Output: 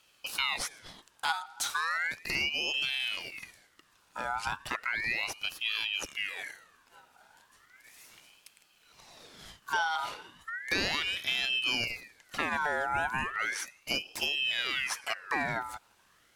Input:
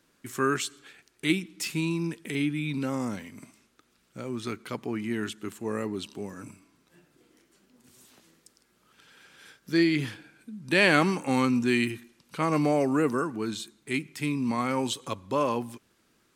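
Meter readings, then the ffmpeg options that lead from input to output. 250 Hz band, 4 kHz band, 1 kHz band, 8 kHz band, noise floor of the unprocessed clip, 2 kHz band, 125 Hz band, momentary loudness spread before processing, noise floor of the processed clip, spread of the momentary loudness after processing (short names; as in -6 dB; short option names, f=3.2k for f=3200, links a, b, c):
-19.5 dB, +5.5 dB, -1.5 dB, -0.5 dB, -68 dBFS, +1.0 dB, -16.5 dB, 16 LU, -66 dBFS, 14 LU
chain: -af "acompressor=threshold=-31dB:ratio=4,aeval=exprs='val(0)*sin(2*PI*2000*n/s+2000*0.45/0.35*sin(2*PI*0.35*n/s))':c=same,volume=5dB"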